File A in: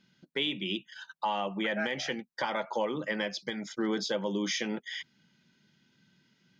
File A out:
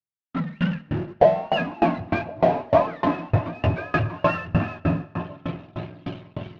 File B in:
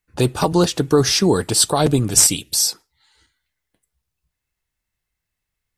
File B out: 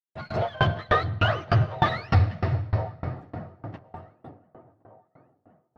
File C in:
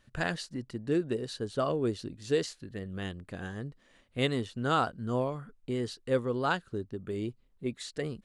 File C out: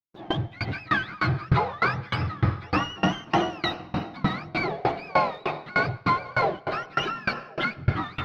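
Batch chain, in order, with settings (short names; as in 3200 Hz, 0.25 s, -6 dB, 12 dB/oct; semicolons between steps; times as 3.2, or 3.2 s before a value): spectrum mirrored in octaves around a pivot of 740 Hz; recorder AGC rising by 35 dB/s; bell 680 Hz +12.5 dB 0.6 oct; in parallel at -3.5 dB: fuzz box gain 33 dB, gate -37 dBFS; on the sum: plate-style reverb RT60 4 s, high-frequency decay 0.65×, pre-delay 95 ms, DRR 8 dB; expander -31 dBFS; air absorption 290 m; on a send: band-limited delay 1.064 s, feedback 33%, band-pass 460 Hz, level -9 dB; on the sum: dB-ramp tremolo decaying 3.3 Hz, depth 27 dB; gain -6 dB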